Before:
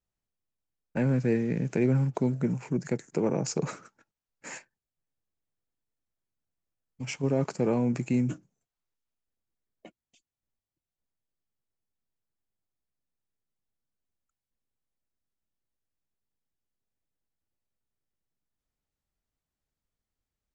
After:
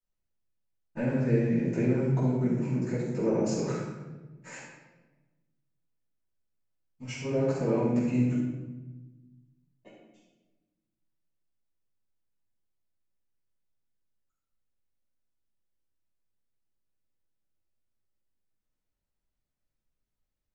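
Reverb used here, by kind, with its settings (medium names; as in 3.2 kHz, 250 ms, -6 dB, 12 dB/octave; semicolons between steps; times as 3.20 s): simulated room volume 650 m³, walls mixed, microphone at 9.3 m; trim -17.5 dB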